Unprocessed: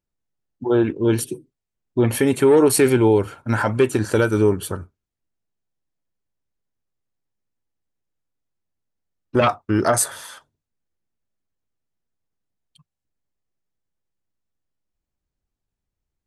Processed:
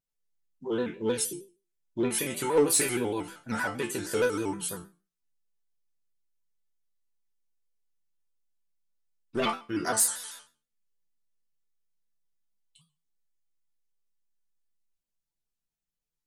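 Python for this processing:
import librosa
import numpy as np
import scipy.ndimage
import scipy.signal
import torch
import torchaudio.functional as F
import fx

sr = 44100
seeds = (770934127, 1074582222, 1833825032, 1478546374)

p1 = fx.high_shelf(x, sr, hz=2600.0, db=11.5)
p2 = fx.resonator_bank(p1, sr, root=51, chord='minor', decay_s=0.33)
p3 = 10.0 ** (-26.0 / 20.0) * (np.abs((p2 / 10.0 ** (-26.0 / 20.0) + 3.0) % 4.0 - 2.0) - 1.0)
p4 = p2 + (p3 * librosa.db_to_amplitude(-10.0))
p5 = fx.vibrato_shape(p4, sr, shape='square', rate_hz=6.4, depth_cents=100.0)
y = p5 * librosa.db_to_amplitude(2.0)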